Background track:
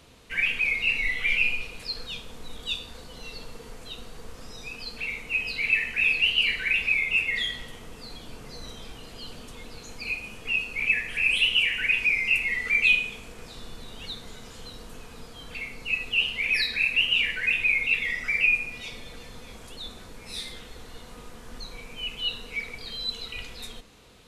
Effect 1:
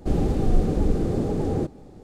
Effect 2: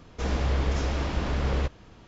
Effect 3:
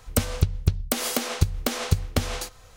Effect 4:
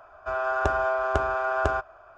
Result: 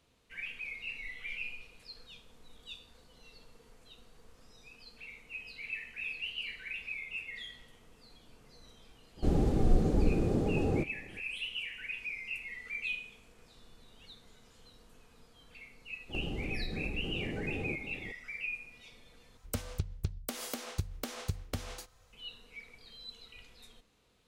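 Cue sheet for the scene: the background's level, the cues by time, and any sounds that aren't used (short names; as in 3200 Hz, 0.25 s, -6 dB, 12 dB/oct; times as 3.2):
background track -16.5 dB
9.17 add 1 -5.5 dB
16.09 add 1 -1.5 dB + compressor 10:1, threshold -32 dBFS
19.37 replace with 3 -13.5 dB
not used: 2, 4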